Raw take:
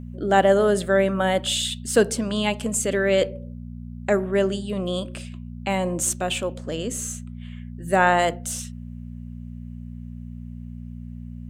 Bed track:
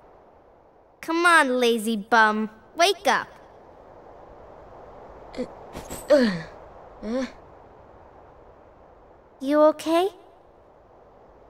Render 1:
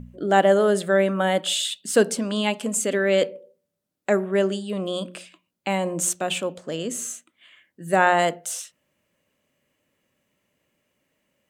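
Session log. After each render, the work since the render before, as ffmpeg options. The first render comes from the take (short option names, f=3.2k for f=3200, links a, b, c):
-af "bandreject=f=60:t=h:w=4,bandreject=f=120:t=h:w=4,bandreject=f=180:t=h:w=4,bandreject=f=240:t=h:w=4"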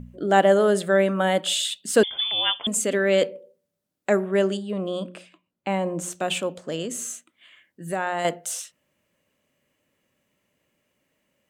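-filter_complex "[0:a]asettb=1/sr,asplit=3[a][b][c];[a]atrim=end=2.034[d];[b]atrim=start=2.03:end=2.67,asetpts=PTS-STARTPTS,afade=t=in:d=0.004:c=qsin,afade=t=out:st=0.636:d=0.004:c=qsin,lowpass=f=3.1k:t=q:w=0.5098,lowpass=f=3.1k:t=q:w=0.6013,lowpass=f=3.1k:t=q:w=0.9,lowpass=f=3.1k:t=q:w=2.563,afreqshift=-3700[e];[c]atrim=start=2.666[f];[d][e]acrossfade=d=0.004:c1=hsin:c2=qsin[g];[g][f]acrossfade=d=0.004:c1=qsin:c2=hsin,asettb=1/sr,asplit=3[h][i][j];[h]atrim=end=4.574[k];[i]atrim=start=4.57:end=6.13,asetpts=PTS-STARTPTS,afade=t=in:d=0.004:c=qsin,afade=t=out:st=1.556:d=0.004:c=qsin,highshelf=f=2.9k:g=-11[l];[j]atrim=start=6.126[m];[k][l]acrossfade=d=0.004:c1=hsin:c2=qsin[n];[n][m]acrossfade=d=0.004:c1=qsin:c2=hsin,asettb=1/sr,asplit=3[o][p][q];[o]atrim=end=6.854[r];[p]atrim=start=6.85:end=8.25,asetpts=PTS-STARTPTS,afade=t=in:d=0.004:c=qsin,afade=t=out:st=1.396:d=0.004:c=qsin,acompressor=threshold=-28dB:ratio=2:attack=3.2:release=140:knee=1:detection=peak[s];[q]atrim=start=8.246[t];[r][s]acrossfade=d=0.004:c1=hsin:c2=qsin[u];[u][t]acrossfade=d=0.004:c1=qsin:c2=hsin"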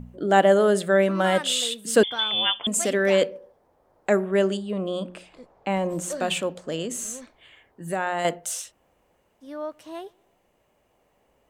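-filter_complex "[1:a]volume=-16dB[a];[0:a][a]amix=inputs=2:normalize=0"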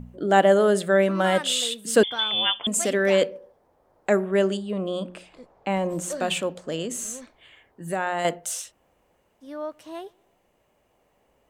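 -af anull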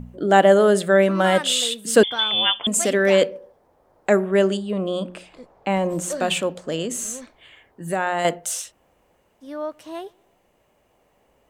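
-af "volume=3.5dB,alimiter=limit=-1dB:level=0:latency=1"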